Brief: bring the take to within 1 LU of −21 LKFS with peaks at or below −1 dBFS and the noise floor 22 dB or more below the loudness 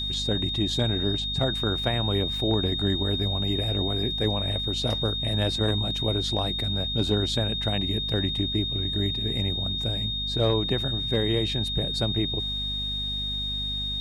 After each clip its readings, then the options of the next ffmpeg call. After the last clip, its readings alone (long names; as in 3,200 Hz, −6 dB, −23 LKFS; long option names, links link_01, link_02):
mains hum 50 Hz; hum harmonics up to 250 Hz; level of the hum −32 dBFS; interfering tone 3,700 Hz; level of the tone −28 dBFS; integrated loudness −25.5 LKFS; sample peak −11.5 dBFS; target loudness −21.0 LKFS
→ -af "bandreject=frequency=50:width_type=h:width=4,bandreject=frequency=100:width_type=h:width=4,bandreject=frequency=150:width_type=h:width=4,bandreject=frequency=200:width_type=h:width=4,bandreject=frequency=250:width_type=h:width=4"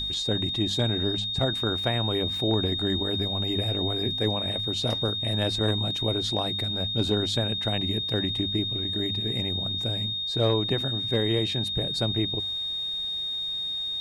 mains hum none found; interfering tone 3,700 Hz; level of the tone −28 dBFS
→ -af "bandreject=frequency=3700:width=30"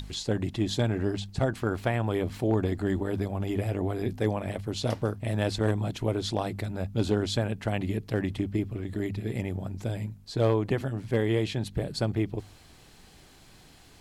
interfering tone none found; integrated loudness −29.5 LKFS; sample peak −13.5 dBFS; target loudness −21.0 LKFS
→ -af "volume=8.5dB"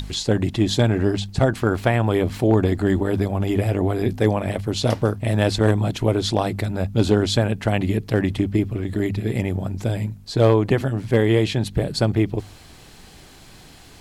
integrated loudness −21.0 LKFS; sample peak −5.0 dBFS; background noise floor −46 dBFS